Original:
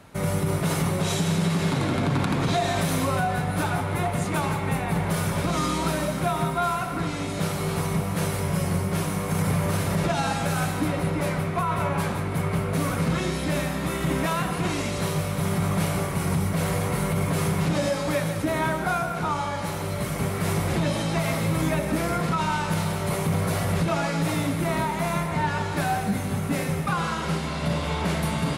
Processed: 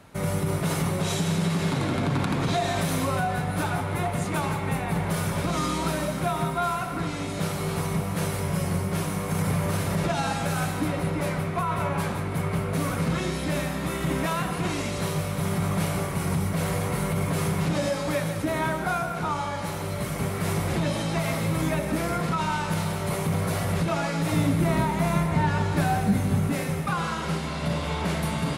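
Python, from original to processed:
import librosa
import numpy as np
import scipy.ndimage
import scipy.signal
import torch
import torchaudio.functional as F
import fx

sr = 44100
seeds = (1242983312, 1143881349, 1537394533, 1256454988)

y = fx.low_shelf(x, sr, hz=330.0, db=7.0, at=(24.32, 26.5))
y = F.gain(torch.from_numpy(y), -1.5).numpy()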